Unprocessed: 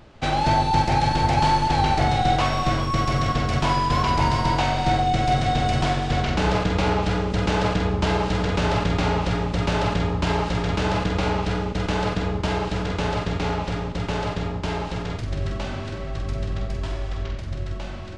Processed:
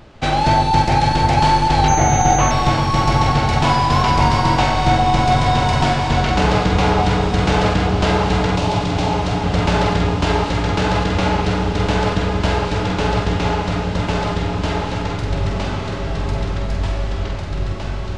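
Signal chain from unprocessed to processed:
0:08.56–0:09.44: phaser with its sweep stopped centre 310 Hz, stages 8
feedback delay with all-pass diffusion 1,589 ms, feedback 44%, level −7 dB
0:01.88–0:02.51: switching amplifier with a slow clock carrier 6,300 Hz
level +5 dB

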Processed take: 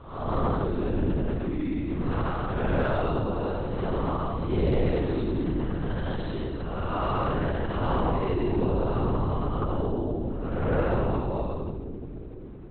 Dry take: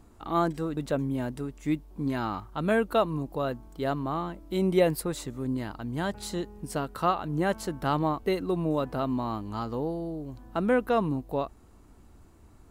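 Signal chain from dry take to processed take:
spectrum smeared in time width 322 ms
echo with a time of its own for lows and highs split 420 Hz, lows 491 ms, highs 87 ms, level −6 dB
linear-prediction vocoder at 8 kHz whisper
soft clipping −20.5 dBFS, distortion −23 dB
level +6 dB

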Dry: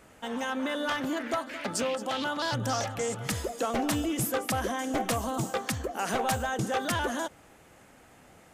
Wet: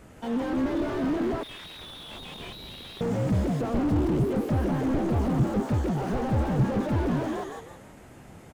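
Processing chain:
low-shelf EQ 350 Hz +11.5 dB
on a send: echo with shifted repeats 164 ms, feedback 36%, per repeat +71 Hz, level −3 dB
0:01.43–0:03.01: on the sum: voice inversion scrambler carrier 4,000 Hz
slew-rate limiting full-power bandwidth 23 Hz

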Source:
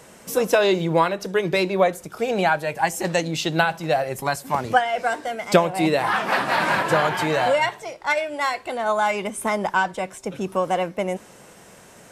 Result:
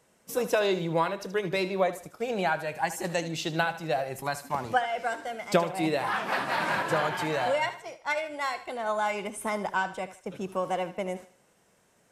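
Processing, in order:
noise gate −35 dBFS, range −11 dB
feedback echo with a high-pass in the loop 76 ms, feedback 38%, level −13 dB
level −7.5 dB

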